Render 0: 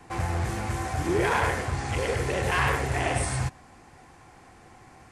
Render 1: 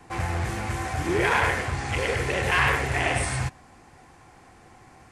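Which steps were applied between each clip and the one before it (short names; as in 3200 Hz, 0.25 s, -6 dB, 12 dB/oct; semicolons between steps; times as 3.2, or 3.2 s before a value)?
dynamic EQ 2300 Hz, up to +6 dB, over -41 dBFS, Q 0.9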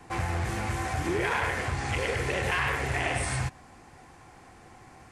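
compressor 3:1, threshold -26 dBFS, peak gain reduction 7 dB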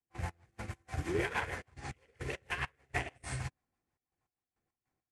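rotary speaker horn 6.3 Hz; step gate ".x..x.xxxxx.x..x" 102 bpm -12 dB; upward expander 2.5:1, over -48 dBFS; gain -1.5 dB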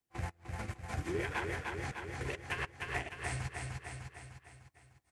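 on a send: feedback echo 0.301 s, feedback 51%, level -6.5 dB; on the sum: compressor 2:1, threshold -43 dBFS, peak gain reduction 8.5 dB; gain +4.5 dB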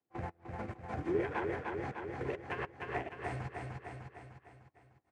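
band-pass 420 Hz, Q 0.62; gain +5 dB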